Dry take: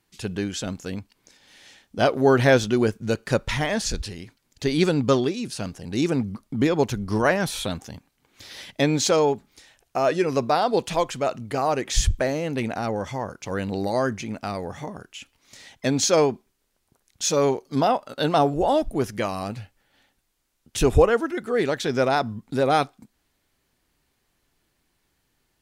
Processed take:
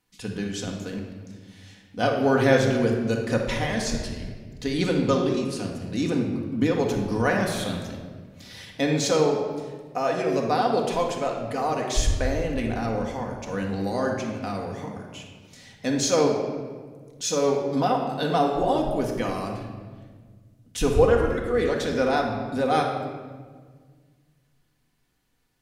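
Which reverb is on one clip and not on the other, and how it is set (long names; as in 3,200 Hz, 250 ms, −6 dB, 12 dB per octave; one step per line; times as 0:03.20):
rectangular room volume 1,800 cubic metres, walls mixed, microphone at 1.9 metres
level −5 dB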